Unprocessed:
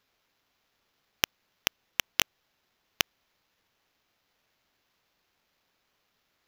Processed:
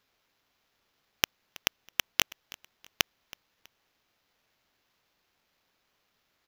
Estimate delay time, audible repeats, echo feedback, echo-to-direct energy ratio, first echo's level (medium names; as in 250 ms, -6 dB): 324 ms, 2, 32%, -20.0 dB, -20.5 dB